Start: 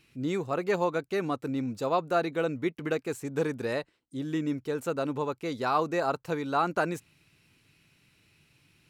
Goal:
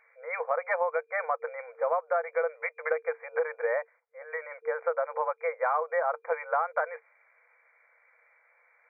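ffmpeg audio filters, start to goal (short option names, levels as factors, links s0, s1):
-af "afftfilt=real='re*between(b*sr/4096,460,2400)':imag='im*between(b*sr/4096,460,2400)':win_size=4096:overlap=0.75,acompressor=threshold=0.0224:ratio=6,volume=2.66"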